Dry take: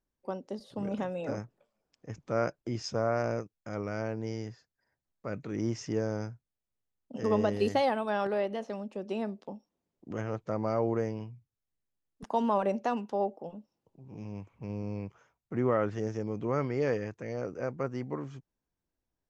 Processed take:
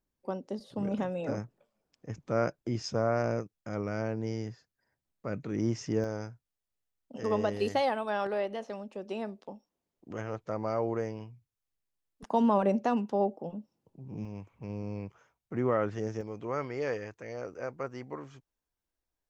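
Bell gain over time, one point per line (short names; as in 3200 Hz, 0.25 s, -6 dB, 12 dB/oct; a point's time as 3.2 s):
bell 170 Hz 2.3 oct
+2.5 dB
from 6.04 s -4.5 dB
from 12.3 s +6 dB
from 14.25 s -1.5 dB
from 16.21 s -9 dB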